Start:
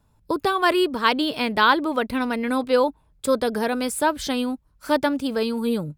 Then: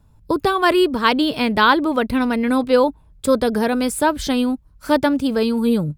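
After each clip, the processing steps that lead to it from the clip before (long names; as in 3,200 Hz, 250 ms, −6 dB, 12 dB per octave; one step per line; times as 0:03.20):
low-shelf EQ 220 Hz +9 dB
level +2.5 dB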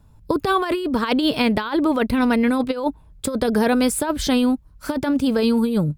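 compressor whose output falls as the input rises −18 dBFS, ratio −0.5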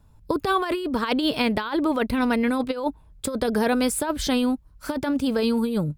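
parametric band 160 Hz −2.5 dB 2.2 octaves
level −2.5 dB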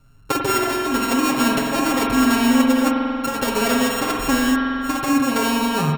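samples sorted by size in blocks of 32 samples
comb filter 7.4 ms, depth 93%
spring reverb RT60 2.8 s, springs 46 ms, chirp 75 ms, DRR 0 dB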